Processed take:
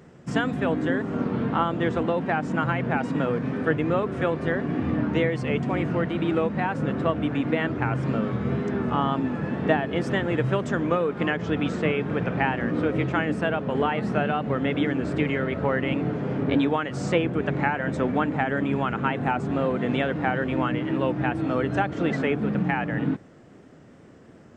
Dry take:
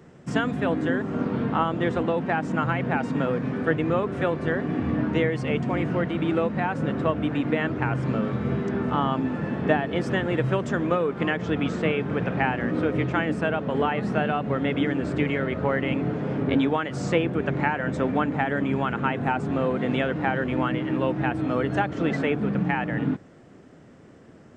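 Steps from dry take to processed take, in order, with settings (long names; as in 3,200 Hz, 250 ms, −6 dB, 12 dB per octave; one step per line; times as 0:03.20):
tape wow and flutter 51 cents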